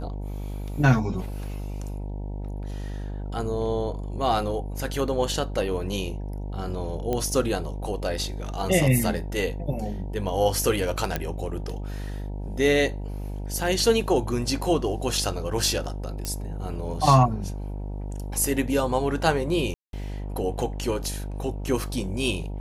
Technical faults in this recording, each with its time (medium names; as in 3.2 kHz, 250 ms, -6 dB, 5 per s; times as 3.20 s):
buzz 50 Hz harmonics 19 -32 dBFS
7.13 s: pop -14 dBFS
11.16 s: pop -10 dBFS
16.25 s: pop -14 dBFS
19.74–19.93 s: dropout 192 ms